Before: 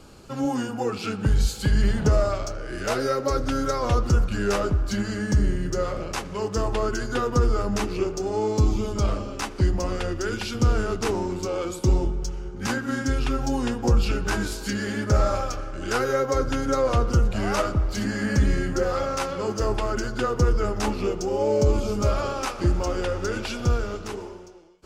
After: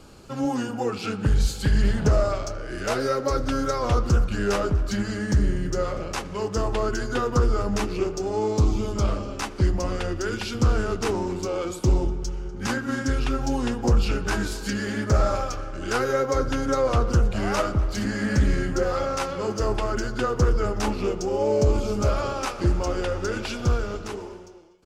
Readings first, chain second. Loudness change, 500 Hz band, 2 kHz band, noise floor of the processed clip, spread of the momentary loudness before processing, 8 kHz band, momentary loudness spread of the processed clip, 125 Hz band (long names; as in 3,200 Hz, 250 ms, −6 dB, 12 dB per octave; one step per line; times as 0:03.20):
0.0 dB, 0.0 dB, 0.0 dB, −36 dBFS, 6 LU, −0.5 dB, 6 LU, 0.0 dB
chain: slap from a distant wall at 42 metres, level −20 dB
highs frequency-modulated by the lows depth 0.2 ms